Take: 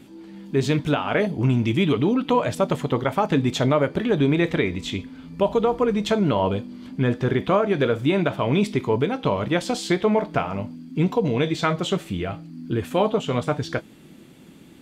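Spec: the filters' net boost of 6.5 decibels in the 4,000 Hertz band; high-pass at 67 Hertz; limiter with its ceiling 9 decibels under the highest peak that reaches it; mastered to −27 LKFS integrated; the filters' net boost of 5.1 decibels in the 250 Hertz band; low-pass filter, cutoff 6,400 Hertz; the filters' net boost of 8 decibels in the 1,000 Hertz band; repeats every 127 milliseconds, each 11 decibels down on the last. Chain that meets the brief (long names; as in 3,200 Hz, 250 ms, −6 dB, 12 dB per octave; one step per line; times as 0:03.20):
high-pass filter 67 Hz
low-pass filter 6,400 Hz
parametric band 250 Hz +6 dB
parametric band 1,000 Hz +9 dB
parametric band 4,000 Hz +8 dB
brickwall limiter −9.5 dBFS
repeating echo 127 ms, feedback 28%, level −11 dB
level −6.5 dB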